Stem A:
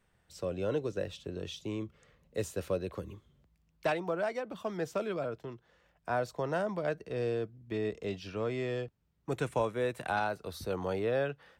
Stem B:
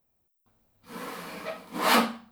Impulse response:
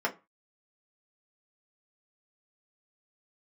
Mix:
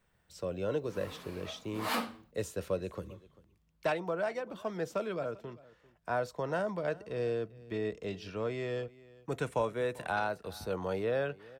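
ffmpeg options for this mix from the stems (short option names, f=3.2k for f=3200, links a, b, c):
-filter_complex "[0:a]volume=-1.5dB,asplit=3[a][b][c];[b]volume=-22.5dB[d];[c]volume=-21dB[e];[1:a]volume=-11.5dB[f];[2:a]atrim=start_sample=2205[g];[d][g]afir=irnorm=-1:irlink=0[h];[e]aecho=0:1:393:1[i];[a][f][h][i]amix=inputs=4:normalize=0"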